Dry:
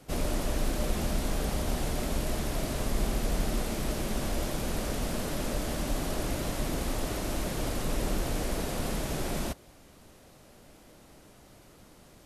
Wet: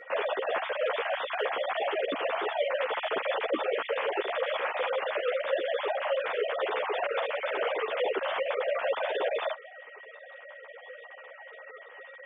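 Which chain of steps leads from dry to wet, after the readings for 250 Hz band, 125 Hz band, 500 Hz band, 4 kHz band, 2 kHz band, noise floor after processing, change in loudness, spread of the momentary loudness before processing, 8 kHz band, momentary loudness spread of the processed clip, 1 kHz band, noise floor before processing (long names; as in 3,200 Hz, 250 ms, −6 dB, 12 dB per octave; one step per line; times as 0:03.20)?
−12.0 dB, below −35 dB, +8.0 dB, +1.5 dB, +8.5 dB, −49 dBFS, +2.5 dB, 2 LU, below −40 dB, 17 LU, +7.0 dB, −56 dBFS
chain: three sine waves on the formant tracks
high-pass filter 460 Hz 6 dB per octave
speech leveller 0.5 s
steady tone 1,900 Hz −49 dBFS
harmonic generator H 2 −42 dB, 3 −34 dB, 5 −39 dB, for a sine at −20 dBFS
string-ensemble chorus
level +5 dB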